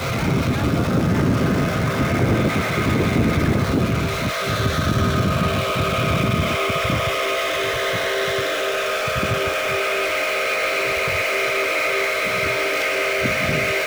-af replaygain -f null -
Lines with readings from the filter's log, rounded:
track_gain = +3.7 dB
track_peak = 0.295